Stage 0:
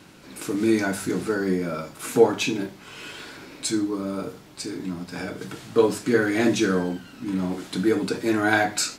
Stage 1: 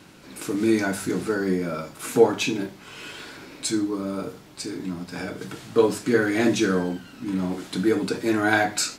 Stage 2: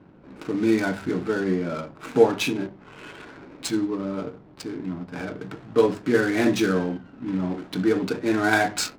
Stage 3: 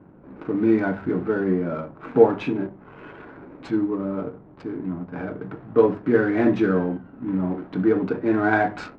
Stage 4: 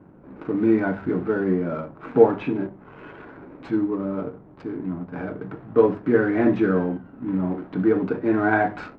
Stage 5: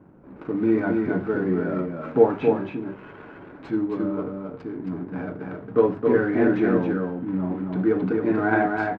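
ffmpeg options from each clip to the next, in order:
-af anull
-af "adynamicsmooth=sensitivity=7:basefreq=700"
-af "lowpass=1.5k,volume=2dB"
-filter_complex "[0:a]acrossover=split=3000[a][b];[b]acompressor=threshold=-55dB:ratio=4:attack=1:release=60[c];[a][c]amix=inputs=2:normalize=0"
-af "aecho=1:1:269:0.631,volume=-2dB"

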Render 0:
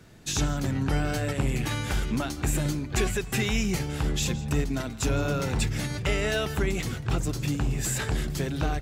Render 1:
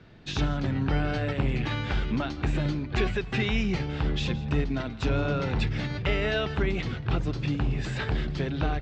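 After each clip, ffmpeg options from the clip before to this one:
-af "lowpass=f=4.2k:w=0.5412,lowpass=f=4.2k:w=1.3066"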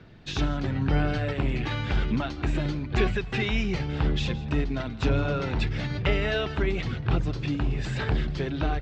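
-af "aphaser=in_gain=1:out_gain=1:delay=3.2:decay=0.26:speed=0.99:type=sinusoidal"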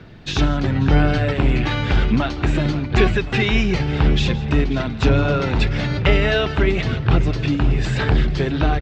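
-filter_complex "[0:a]asplit=2[a][b];[b]adelay=536,lowpass=f=4.8k:p=1,volume=-15dB,asplit=2[c][d];[d]adelay=536,lowpass=f=4.8k:p=1,volume=0.53,asplit=2[e][f];[f]adelay=536,lowpass=f=4.8k:p=1,volume=0.53,asplit=2[g][h];[h]adelay=536,lowpass=f=4.8k:p=1,volume=0.53,asplit=2[i][j];[j]adelay=536,lowpass=f=4.8k:p=1,volume=0.53[k];[a][c][e][g][i][k]amix=inputs=6:normalize=0,volume=8.5dB"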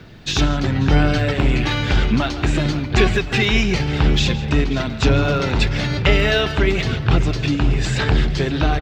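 -filter_complex "[0:a]asplit=2[a][b];[b]adelay=140,highpass=300,lowpass=3.4k,asoftclip=type=hard:threshold=-12dB,volume=-14dB[c];[a][c]amix=inputs=2:normalize=0,crystalizer=i=2:c=0"

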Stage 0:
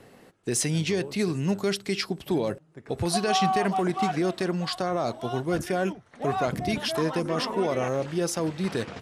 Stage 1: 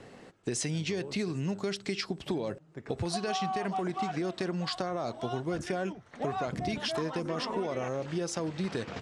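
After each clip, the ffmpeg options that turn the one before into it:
-af "lowpass=f=8.4k:w=0.5412,lowpass=f=8.4k:w=1.3066,acompressor=threshold=-31dB:ratio=6,volume=1.5dB"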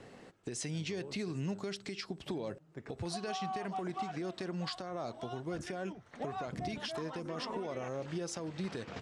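-af "alimiter=level_in=1.5dB:limit=-24dB:level=0:latency=1:release=301,volume=-1.5dB,volume=-3dB"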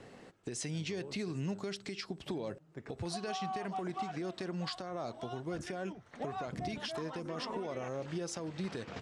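-af anull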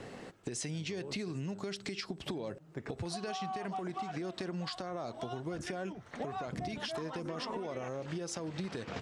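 -af "acompressor=threshold=-42dB:ratio=6,volume=6.5dB"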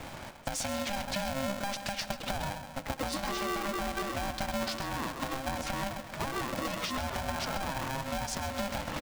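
-filter_complex "[0:a]asplit=2[a][b];[b]adelay=131,lowpass=f=4.3k:p=1,volume=-9dB,asplit=2[c][d];[d]adelay=131,lowpass=f=4.3k:p=1,volume=0.5,asplit=2[e][f];[f]adelay=131,lowpass=f=4.3k:p=1,volume=0.5,asplit=2[g][h];[h]adelay=131,lowpass=f=4.3k:p=1,volume=0.5,asplit=2[i][j];[j]adelay=131,lowpass=f=4.3k:p=1,volume=0.5,asplit=2[k][l];[l]adelay=131,lowpass=f=4.3k:p=1,volume=0.5[m];[a][c][e][g][i][k][m]amix=inputs=7:normalize=0,aeval=exprs='val(0)*sgn(sin(2*PI*400*n/s))':c=same,volume=4dB"

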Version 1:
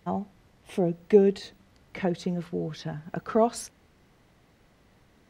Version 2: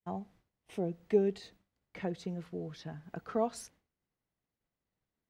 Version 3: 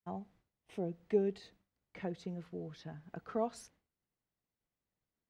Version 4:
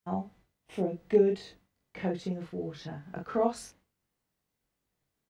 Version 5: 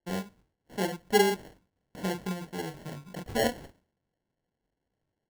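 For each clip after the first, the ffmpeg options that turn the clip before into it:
-af "agate=range=-33dB:threshold=-47dB:ratio=3:detection=peak,volume=-9dB"
-af "highshelf=f=7k:g=-6,volume=-3.5dB"
-af "aecho=1:1:21|43:0.631|0.668,volume=5.5dB"
-af "acrusher=samples=36:mix=1:aa=0.000001"

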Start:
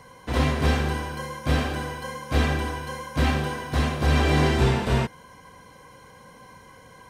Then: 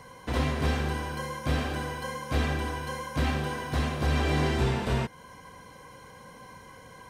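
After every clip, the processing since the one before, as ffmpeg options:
-af "acompressor=threshold=-32dB:ratio=1.5"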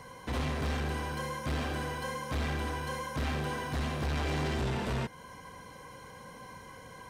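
-af "asoftclip=type=tanh:threshold=-28.5dB"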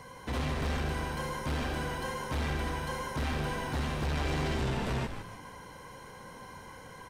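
-filter_complex "[0:a]asplit=5[a][b][c][d][e];[b]adelay=151,afreqshift=-120,volume=-8.5dB[f];[c]adelay=302,afreqshift=-240,volume=-16.5dB[g];[d]adelay=453,afreqshift=-360,volume=-24.4dB[h];[e]adelay=604,afreqshift=-480,volume=-32.4dB[i];[a][f][g][h][i]amix=inputs=5:normalize=0"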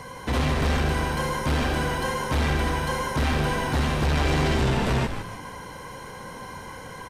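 -af "aresample=32000,aresample=44100,volume=9dB"

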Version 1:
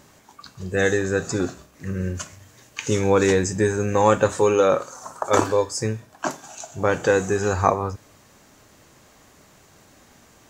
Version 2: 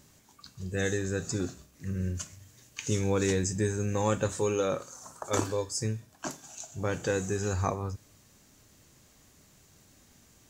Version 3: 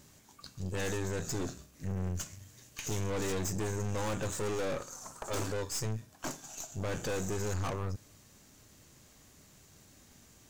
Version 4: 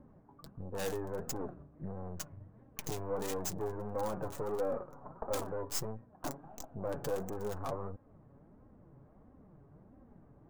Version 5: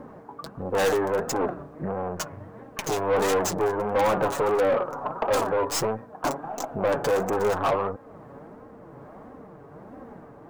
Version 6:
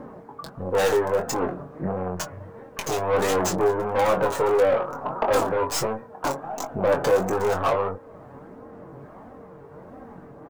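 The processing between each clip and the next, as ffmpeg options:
-af "equalizer=f=900:w=0.36:g=-10.5,volume=-3dB"
-af "aeval=exprs='(tanh(63.1*val(0)+0.65)-tanh(0.65))/63.1':c=same,volume=4dB"
-filter_complex "[0:a]acrossover=split=500|1100[a][b][c];[a]acompressor=threshold=-43dB:ratio=6[d];[c]acrusher=bits=4:mix=0:aa=0.5[e];[d][b][e]amix=inputs=3:normalize=0,flanger=delay=3.7:depth=3.5:regen=37:speed=1.5:shape=sinusoidal,volume=7.5dB"
-filter_complex "[0:a]tremolo=f=1.2:d=0.28,asplit=2[a][b];[b]highpass=f=720:p=1,volume=24dB,asoftclip=type=tanh:threshold=-19dB[c];[a][c]amix=inputs=2:normalize=0,lowpass=f=4.7k:p=1,volume=-6dB,aeval=exprs='val(0)+0.00126*sin(2*PI*460*n/s)':c=same,volume=6dB"
-filter_complex "[0:a]aphaser=in_gain=1:out_gain=1:delay=2.2:decay=0.23:speed=0.57:type=sinusoidal,asplit=2[a][b];[b]adelay=22,volume=-7dB[c];[a][c]amix=inputs=2:normalize=0"

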